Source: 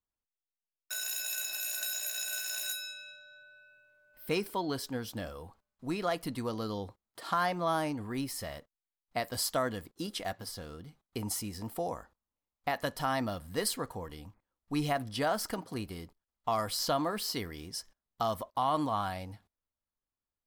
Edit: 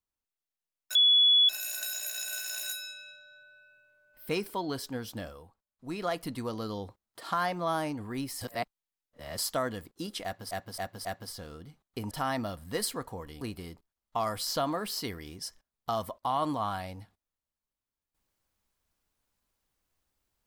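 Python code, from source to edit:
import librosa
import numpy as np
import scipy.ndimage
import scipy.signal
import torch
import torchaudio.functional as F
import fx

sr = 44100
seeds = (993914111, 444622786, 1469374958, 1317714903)

y = fx.edit(x, sr, fx.bleep(start_s=0.95, length_s=0.54, hz=3400.0, db=-18.0),
    fx.fade_down_up(start_s=5.2, length_s=0.85, db=-13.5, fade_s=0.37),
    fx.reverse_span(start_s=8.41, length_s=0.97),
    fx.repeat(start_s=10.24, length_s=0.27, count=4),
    fx.cut(start_s=11.3, length_s=1.64),
    fx.cut(start_s=14.24, length_s=1.49), tone=tone)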